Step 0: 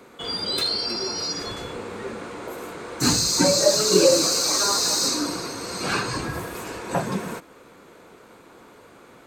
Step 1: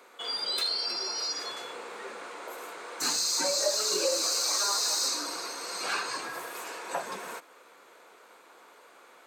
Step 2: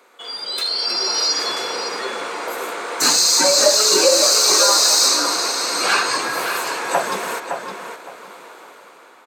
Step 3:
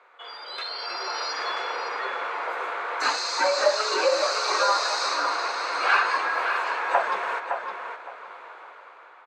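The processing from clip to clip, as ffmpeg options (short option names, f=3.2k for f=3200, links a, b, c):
-af "acompressor=threshold=-26dB:ratio=1.5,highpass=600,volume=-3dB"
-filter_complex "[0:a]dynaudnorm=f=240:g=7:m=12dB,asplit=2[a][b];[b]adelay=562,lowpass=f=4.2k:p=1,volume=-6.5dB,asplit=2[c][d];[d]adelay=562,lowpass=f=4.2k:p=1,volume=0.24,asplit=2[e][f];[f]adelay=562,lowpass=f=4.2k:p=1,volume=0.24[g];[a][c][e][g]amix=inputs=4:normalize=0,volume=2dB"
-af "highpass=720,lowpass=2.1k"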